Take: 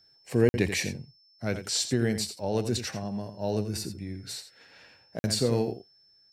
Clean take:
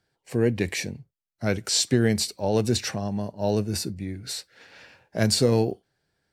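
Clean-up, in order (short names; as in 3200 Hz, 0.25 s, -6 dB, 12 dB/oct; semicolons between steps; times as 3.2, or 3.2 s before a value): notch 5300 Hz, Q 30; interpolate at 0.49/5.19, 50 ms; inverse comb 85 ms -10.5 dB; gain 0 dB, from 1.18 s +5.5 dB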